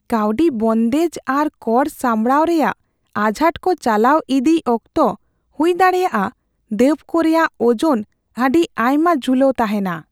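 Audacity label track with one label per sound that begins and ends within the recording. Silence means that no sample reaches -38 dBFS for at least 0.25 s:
3.160000	5.150000	sound
5.590000	6.320000	sound
6.710000	8.030000	sound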